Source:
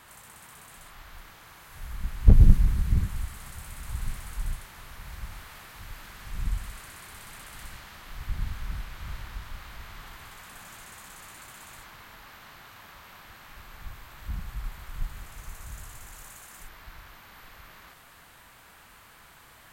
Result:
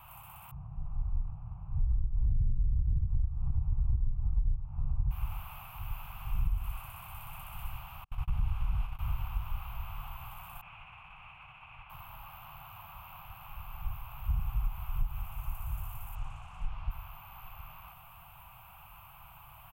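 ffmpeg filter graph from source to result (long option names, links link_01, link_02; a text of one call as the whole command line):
ffmpeg -i in.wav -filter_complex "[0:a]asettb=1/sr,asplit=3[link_01][link_02][link_03];[link_01]atrim=end=0.514[link_04];[link_02]atrim=start=0.51:end=5.11,asetpts=PTS-STARTPTS,afade=type=in:duration=0.004:curve=qsin,afade=type=out:start_time=4.596:duration=0.004:curve=qsin,adynamicsmooth=sensitivity=2.5:basefreq=550,bass=frequency=250:gain=13,treble=frequency=4000:gain=0[link_05];[link_03]atrim=start=5.106[link_06];[link_04][link_05]acrossfade=duration=0.004:curve1=hsin:curve2=qsin[link_07];[link_07][link_06]acrossfade=duration=0.004:curve1=qsin:curve2=hsin,asettb=1/sr,asplit=3[link_08][link_09][link_10];[link_08]atrim=end=8.044[link_11];[link_09]atrim=start=8.04:end=8.99,asetpts=PTS-STARTPTS,afade=type=in:duration=0.004:curve=qsin,afade=type=out:start_time=0.946:duration=0.004:curve=qsin,agate=range=-43dB:threshold=-40dB:ratio=16:release=100:detection=peak,lowpass=9600,volume=26dB,asoftclip=hard,volume=-26dB[link_12];[link_10]atrim=start=8.986[link_13];[link_11][link_12]acrossfade=duration=0.004:curve1=hsin:curve2=qsin[link_14];[link_14][link_13]acrossfade=duration=0.004:curve1=qsin:curve2=hsin,asettb=1/sr,asplit=3[link_15][link_16][link_17];[link_15]atrim=end=10.614[link_18];[link_16]atrim=start=10.61:end=11.9,asetpts=PTS-STARTPTS,afade=type=in:duration=0.004:curve=qsin,afade=type=out:start_time=1.286:duration=0.004:curve=qsin,agate=range=-33dB:threshold=-42dB:ratio=3:release=100:detection=peak,lowpass=frequency=2500:width_type=q:width=3[link_19];[link_17]atrim=start=11.896[link_20];[link_18][link_19]acrossfade=duration=0.004:curve1=hsin:curve2=qsin[link_21];[link_21][link_20]acrossfade=duration=0.004:curve1=qsin:curve2=hsin,asettb=1/sr,asplit=3[link_22][link_23][link_24];[link_22]atrim=end=16.154[link_25];[link_23]atrim=start=16.15:end=16.91,asetpts=PTS-STARTPTS,afade=type=in:duration=0.004:curve=qsin,afade=type=out:start_time=0.756:duration=0.004:curve=qsin,lowpass=frequency=6900:width=0.5412,lowpass=frequency=6900:width=1.3066,lowshelf=frequency=190:gain=9[link_26];[link_24]atrim=start=16.906[link_27];[link_25][link_26]acrossfade=duration=0.004:curve1=hsin:curve2=qsin[link_28];[link_28][link_27]acrossfade=duration=0.004:curve1=qsin:curve2=hsin,firequalizer=gain_entry='entry(140,0);entry(240,-22);entry(420,-25);entry(760,-1);entry(1200,-4);entry(1800,-24);entry(2600,-2);entry(3900,-23);entry(6800,-24);entry(14000,0)':delay=0.05:min_phase=1,alimiter=limit=-14dB:level=0:latency=1:release=164,acompressor=threshold=-30dB:ratio=12,volume=5.5dB" out.wav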